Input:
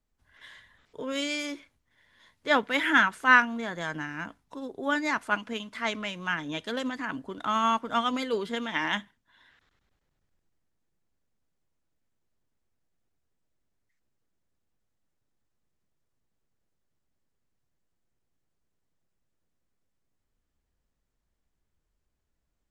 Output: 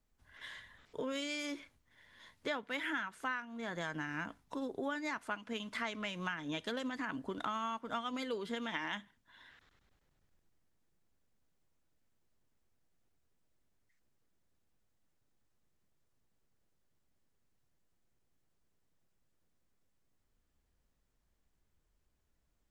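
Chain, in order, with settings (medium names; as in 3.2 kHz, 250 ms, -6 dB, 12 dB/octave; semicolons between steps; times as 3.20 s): compression 12:1, threshold -36 dBFS, peak gain reduction 23.5 dB; trim +1 dB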